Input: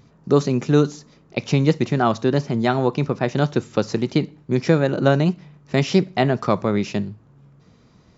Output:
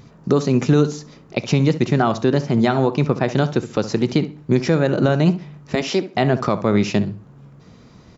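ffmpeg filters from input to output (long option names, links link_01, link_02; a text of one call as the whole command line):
ffmpeg -i in.wav -filter_complex "[0:a]alimiter=limit=-12.5dB:level=0:latency=1:release=328,asettb=1/sr,asplit=3[link_01][link_02][link_03];[link_01]atrim=end=5.754[link_04];[link_02]atrim=start=5.75:end=6.15,asetpts=PTS-STARTPTS,afade=type=in:duration=0.004:curve=qsin,afade=type=out:start_time=0.396:duration=0.004:curve=qsin,highpass=frequency=240:width=0.5412,highpass=frequency=240:width=1.3066[link_05];[link_03]atrim=start=6.146[link_06];[link_04][link_05]acrossfade=duration=0.004:curve1=hsin:curve2=qsin[link_07];[link_07][link_06]acrossfade=duration=0.004:curve1=qsin:curve2=hsin,asplit=2[link_08][link_09];[link_09]adelay=67,lowpass=frequency=2000:poles=1,volume=-13dB,asplit=2[link_10][link_11];[link_11]adelay=67,lowpass=frequency=2000:poles=1,volume=0.26,asplit=2[link_12][link_13];[link_13]adelay=67,lowpass=frequency=2000:poles=1,volume=0.26[link_14];[link_08][link_10][link_12][link_14]amix=inputs=4:normalize=0,volume=7dB" out.wav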